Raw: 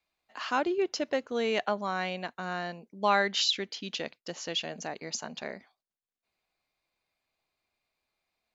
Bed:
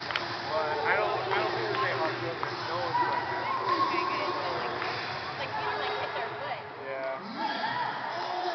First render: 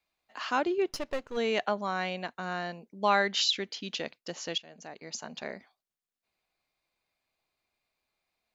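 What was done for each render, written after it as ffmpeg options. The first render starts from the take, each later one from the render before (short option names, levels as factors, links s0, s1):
-filter_complex "[0:a]asplit=3[s0][s1][s2];[s0]afade=t=out:st=0.89:d=0.02[s3];[s1]aeval=exprs='if(lt(val(0),0),0.251*val(0),val(0))':c=same,afade=t=in:st=0.89:d=0.02,afade=t=out:st=1.36:d=0.02[s4];[s2]afade=t=in:st=1.36:d=0.02[s5];[s3][s4][s5]amix=inputs=3:normalize=0,asplit=2[s6][s7];[s6]atrim=end=4.58,asetpts=PTS-STARTPTS,afade=t=out:st=4.576:d=0.004:c=hsin:silence=0.11885[s8];[s7]atrim=start=4.58,asetpts=PTS-STARTPTS,afade=t=in:d=0.92:silence=0.11885[s9];[s8][s9]concat=n=2:v=0:a=1"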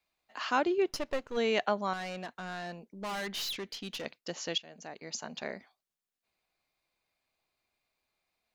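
-filter_complex "[0:a]asettb=1/sr,asplit=3[s0][s1][s2];[s0]atrim=end=1.934[s3];[s1]atrim=start=1.93:end=4.06,asetpts=PTS-STARTPTS,afade=t=in:d=0.004:c=qsin,afade=t=out:st=2.126:d=0.004:c=qsin,aeval=exprs='(tanh(50.1*val(0)+0.2)-tanh(0.2))/50.1':c=same[s4];[s2]atrim=start=4.056[s5];[s3][s4]acrossfade=d=0.004:c1=hsin:c2=qsin[s6];[s6][s5]acrossfade=d=0.004:c1=qsin:c2=hsin"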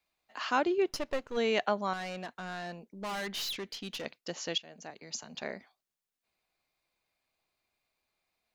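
-filter_complex "[0:a]asettb=1/sr,asplit=3[s0][s1][s2];[s0]atrim=end=4.904[s3];[s1]atrim=start=4.9:end=5.35,asetpts=PTS-STARTPTS,afade=t=in:d=0.004:c=qsin,afade=t=out:st=0.446:d=0.004:c=qsin,acrossover=split=170|3000[s4][s5][s6];[s5]acompressor=threshold=0.00501:ratio=6:attack=3.2:release=140:knee=2.83:detection=peak[s7];[s4][s7][s6]amix=inputs=3:normalize=0[s8];[s2]atrim=start=5.346[s9];[s3][s8]acrossfade=d=0.004:c1=hsin:c2=qsin[s10];[s10][s9]acrossfade=d=0.004:c1=qsin:c2=hsin"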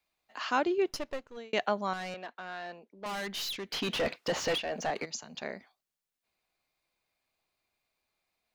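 -filter_complex "[0:a]asettb=1/sr,asplit=3[s0][s1][s2];[s0]atrim=end=2.144[s3];[s1]atrim=start=2.14:end=3.06,asetpts=PTS-STARTPTS,afade=t=in:d=0.004:c=qsin,afade=t=out:st=0.916:d=0.004:c=qsin,acrossover=split=290 4600:gain=0.178 1 0.178[s4][s5][s6];[s4][s5][s6]amix=inputs=3:normalize=0[s7];[s2]atrim=start=3.056[s8];[s3][s7]acrossfade=d=0.004:c1=hsin:c2=qsin[s9];[s9][s8]acrossfade=d=0.004:c1=qsin:c2=hsin,asplit=3[s10][s11][s12];[s10]afade=t=out:st=3.71:d=0.02[s13];[s11]asplit=2[s14][s15];[s15]highpass=f=720:p=1,volume=35.5,asoftclip=type=tanh:threshold=0.112[s16];[s14][s16]amix=inputs=2:normalize=0,lowpass=f=1500:p=1,volume=0.501,afade=t=in:st=3.71:d=0.02,afade=t=out:st=5.04:d=0.02[s17];[s12]afade=t=in:st=5.04:d=0.02[s18];[s13][s17][s18]amix=inputs=3:normalize=0,asplit=2[s19][s20];[s19]atrim=end=1.53,asetpts=PTS-STARTPTS,afade=t=out:st=0.91:d=0.62[s21];[s20]atrim=start=1.53,asetpts=PTS-STARTPTS,afade=t=in:d=0.004:c=hsin[s22];[s21][s22]concat=n=2:v=0:a=1"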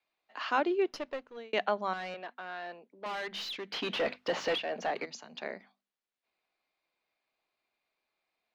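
-filter_complex "[0:a]acrossover=split=200 4700:gain=0.224 1 0.158[s0][s1][s2];[s0][s1][s2]amix=inputs=3:normalize=0,bandreject=f=50:t=h:w=6,bandreject=f=100:t=h:w=6,bandreject=f=150:t=h:w=6,bandreject=f=200:t=h:w=6,bandreject=f=250:t=h:w=6"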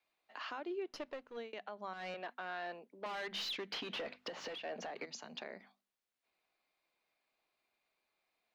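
-af "acompressor=threshold=0.0158:ratio=6,alimiter=level_in=2.66:limit=0.0631:level=0:latency=1:release=271,volume=0.376"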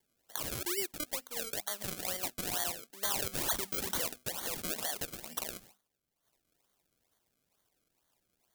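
-af "acrusher=samples=33:mix=1:aa=0.000001:lfo=1:lforange=33:lforate=2.2,crystalizer=i=6.5:c=0"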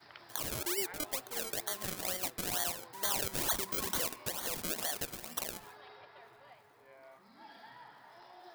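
-filter_complex "[1:a]volume=0.075[s0];[0:a][s0]amix=inputs=2:normalize=0"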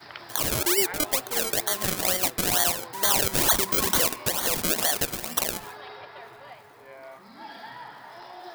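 -af "volume=3.98,alimiter=limit=0.891:level=0:latency=1"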